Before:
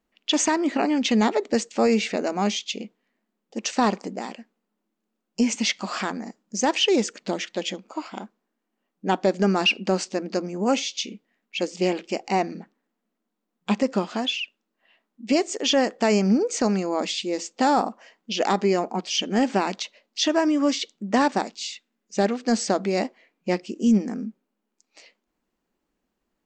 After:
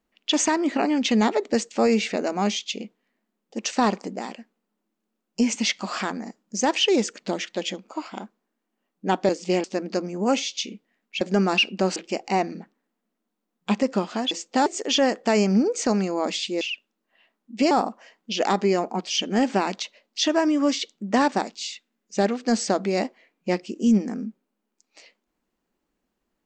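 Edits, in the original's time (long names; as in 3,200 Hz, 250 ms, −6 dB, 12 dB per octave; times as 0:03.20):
0:09.29–0:10.04: swap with 0:11.61–0:11.96
0:14.31–0:15.41: swap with 0:17.36–0:17.71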